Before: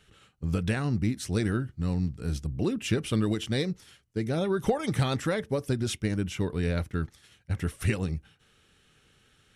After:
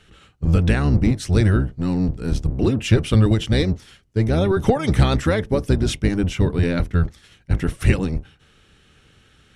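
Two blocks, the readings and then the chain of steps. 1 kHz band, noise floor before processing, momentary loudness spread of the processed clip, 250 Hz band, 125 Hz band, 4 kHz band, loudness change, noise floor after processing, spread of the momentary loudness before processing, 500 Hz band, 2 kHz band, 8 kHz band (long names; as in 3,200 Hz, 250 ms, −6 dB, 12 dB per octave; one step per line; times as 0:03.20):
+8.0 dB, −65 dBFS, 7 LU, +8.5 dB, +11.0 dB, +7.0 dB, +9.5 dB, −55 dBFS, 7 LU, +8.0 dB, +7.5 dB, +4.5 dB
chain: sub-octave generator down 1 octave, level 0 dB
high-shelf EQ 10,000 Hz −11 dB
level +8 dB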